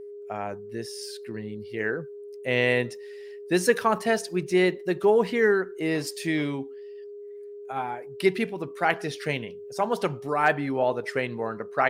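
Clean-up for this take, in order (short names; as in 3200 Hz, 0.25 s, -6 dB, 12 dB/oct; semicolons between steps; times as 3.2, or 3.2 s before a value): clip repair -8.5 dBFS; notch 410 Hz, Q 30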